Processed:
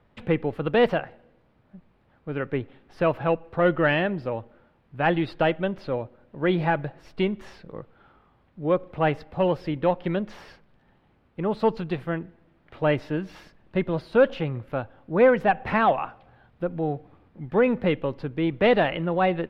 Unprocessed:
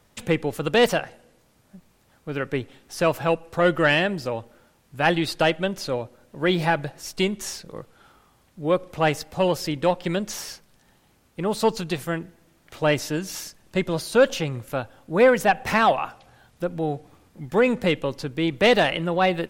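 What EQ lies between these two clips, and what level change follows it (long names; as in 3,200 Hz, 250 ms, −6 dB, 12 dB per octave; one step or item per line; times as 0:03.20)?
high-frequency loss of the air 430 metres
0.0 dB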